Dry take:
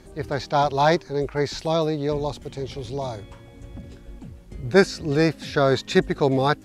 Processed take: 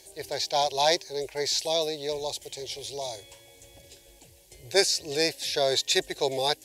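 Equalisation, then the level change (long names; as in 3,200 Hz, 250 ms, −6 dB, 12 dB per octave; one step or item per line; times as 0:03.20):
spectral tilt +4 dB per octave
phaser with its sweep stopped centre 530 Hz, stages 4
−1.0 dB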